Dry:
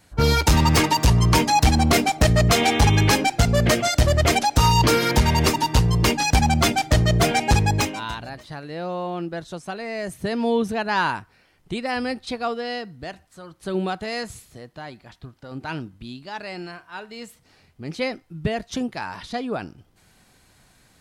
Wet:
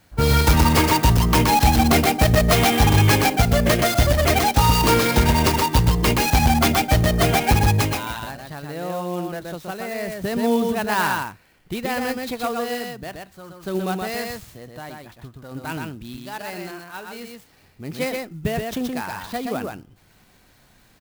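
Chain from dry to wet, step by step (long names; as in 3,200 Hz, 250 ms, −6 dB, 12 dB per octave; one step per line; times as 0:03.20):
on a send: single-tap delay 124 ms −3.5 dB
on the sum: converter with an unsteady clock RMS 0.029 ms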